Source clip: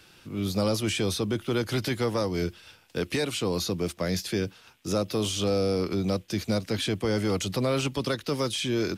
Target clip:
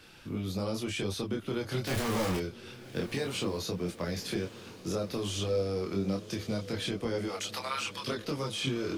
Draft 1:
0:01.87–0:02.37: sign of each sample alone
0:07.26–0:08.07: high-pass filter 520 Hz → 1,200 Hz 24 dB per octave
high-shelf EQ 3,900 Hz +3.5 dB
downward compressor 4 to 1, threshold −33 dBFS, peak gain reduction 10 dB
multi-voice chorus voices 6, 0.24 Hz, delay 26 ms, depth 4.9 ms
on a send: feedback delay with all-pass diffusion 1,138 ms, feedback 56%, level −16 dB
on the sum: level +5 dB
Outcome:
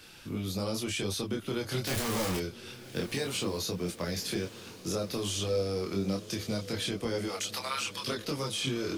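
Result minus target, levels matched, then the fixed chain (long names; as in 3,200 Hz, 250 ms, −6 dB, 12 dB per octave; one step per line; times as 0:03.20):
8,000 Hz band +4.0 dB
0:01.87–0:02.37: sign of each sample alone
0:07.26–0:08.07: high-pass filter 520 Hz → 1,200 Hz 24 dB per octave
high-shelf EQ 3,900 Hz −4.5 dB
downward compressor 4 to 1, threshold −33 dBFS, peak gain reduction 9.5 dB
multi-voice chorus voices 6, 0.24 Hz, delay 26 ms, depth 4.9 ms
on a send: feedback delay with all-pass diffusion 1,138 ms, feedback 56%, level −16 dB
on the sum: level +5 dB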